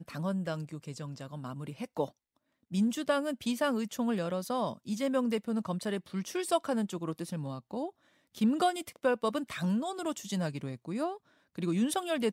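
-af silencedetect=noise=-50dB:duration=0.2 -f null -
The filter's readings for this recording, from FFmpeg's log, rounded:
silence_start: 2.09
silence_end: 2.71 | silence_duration: 0.62
silence_start: 7.90
silence_end: 8.35 | silence_duration: 0.45
silence_start: 11.18
silence_end: 11.55 | silence_duration: 0.38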